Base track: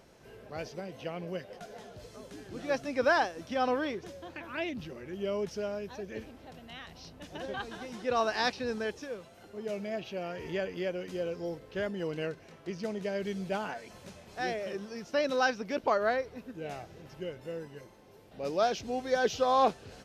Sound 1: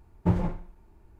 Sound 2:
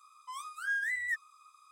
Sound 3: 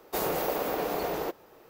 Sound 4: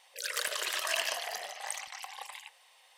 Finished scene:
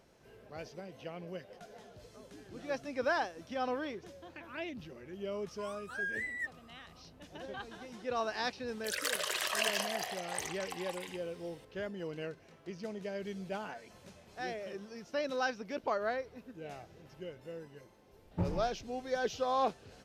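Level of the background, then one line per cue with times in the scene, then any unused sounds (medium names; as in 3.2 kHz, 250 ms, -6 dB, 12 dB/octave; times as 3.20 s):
base track -6 dB
5.31 s: add 2 -4.5 dB + treble shelf 7.8 kHz -8 dB
8.68 s: add 4 -1.5 dB + bass shelf 490 Hz +6.5 dB
18.12 s: add 1 -10.5 dB
not used: 3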